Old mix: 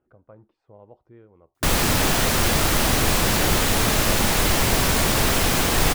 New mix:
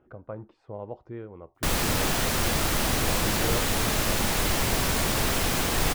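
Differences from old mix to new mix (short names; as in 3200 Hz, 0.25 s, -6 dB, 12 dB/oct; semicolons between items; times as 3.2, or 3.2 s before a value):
speech +10.5 dB; background -5.5 dB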